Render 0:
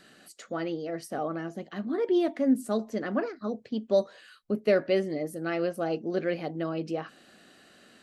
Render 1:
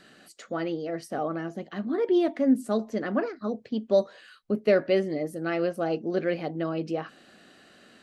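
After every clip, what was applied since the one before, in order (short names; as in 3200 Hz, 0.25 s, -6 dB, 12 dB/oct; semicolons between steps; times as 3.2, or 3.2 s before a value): high shelf 8400 Hz -8 dB; gain +2 dB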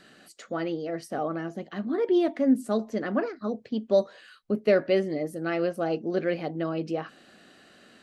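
nothing audible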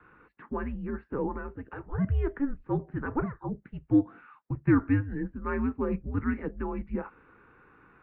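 mistuned SSB -280 Hz 380–2300 Hz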